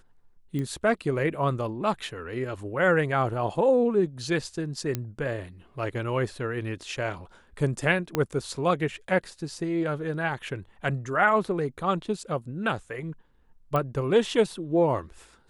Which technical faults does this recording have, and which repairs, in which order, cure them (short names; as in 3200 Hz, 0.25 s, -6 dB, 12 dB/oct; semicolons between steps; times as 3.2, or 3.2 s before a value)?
0.59 pop -21 dBFS
4.95 pop -14 dBFS
8.15 pop -11 dBFS
13.76 pop -15 dBFS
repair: de-click